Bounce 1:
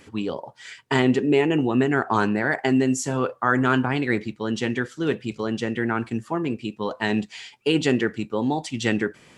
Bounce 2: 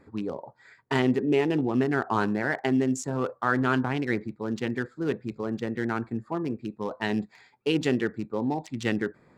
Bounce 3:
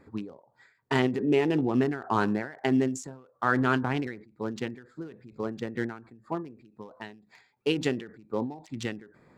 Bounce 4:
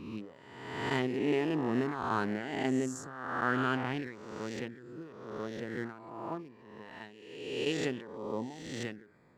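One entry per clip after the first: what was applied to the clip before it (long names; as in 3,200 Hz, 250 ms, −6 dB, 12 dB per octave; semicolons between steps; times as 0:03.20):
adaptive Wiener filter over 15 samples; level −4 dB
every ending faded ahead of time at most 110 dB per second
peak hold with a rise ahead of every peak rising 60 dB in 1.20 s; level −8 dB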